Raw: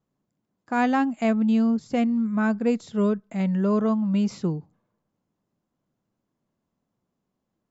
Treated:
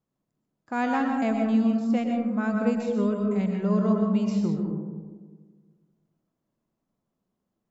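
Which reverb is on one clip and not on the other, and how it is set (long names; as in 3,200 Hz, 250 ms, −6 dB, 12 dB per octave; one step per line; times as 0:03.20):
comb and all-pass reverb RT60 1.5 s, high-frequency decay 0.25×, pre-delay 80 ms, DRR 1.5 dB
level −4.5 dB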